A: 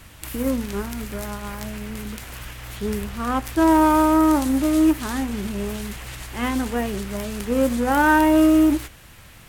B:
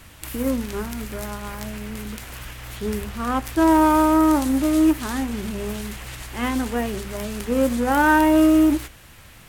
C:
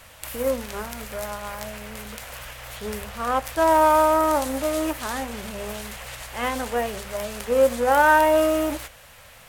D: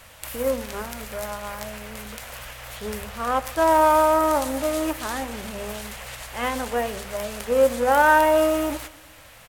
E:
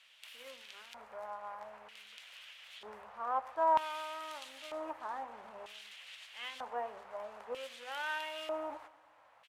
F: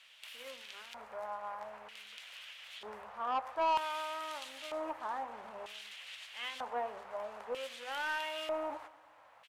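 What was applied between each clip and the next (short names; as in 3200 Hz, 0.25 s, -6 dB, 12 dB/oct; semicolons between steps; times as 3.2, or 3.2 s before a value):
notches 50/100/150/200 Hz
resonant low shelf 430 Hz -6.5 dB, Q 3
feedback echo 0.117 s, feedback 57%, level -19.5 dB
LFO band-pass square 0.53 Hz 910–3100 Hz; gain -7 dB
soft clip -29.5 dBFS, distortion -10 dB; gain +3 dB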